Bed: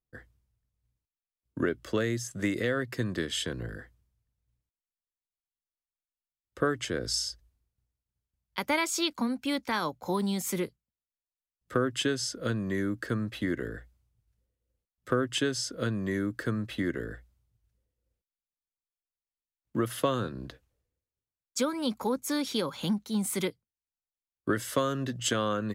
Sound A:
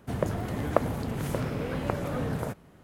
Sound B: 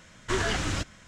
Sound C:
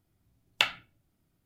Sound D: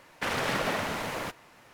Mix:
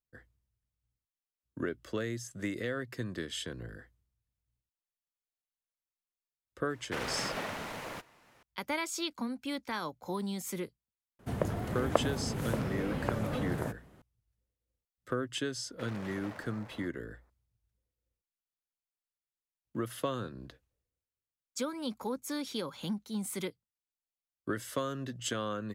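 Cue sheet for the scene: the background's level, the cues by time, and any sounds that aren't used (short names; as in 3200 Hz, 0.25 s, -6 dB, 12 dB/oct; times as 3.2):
bed -6.5 dB
6.7 add D -7.5 dB
11.19 add A -3.5 dB
15.57 add D -16.5 dB + Wiener smoothing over 15 samples
not used: B, C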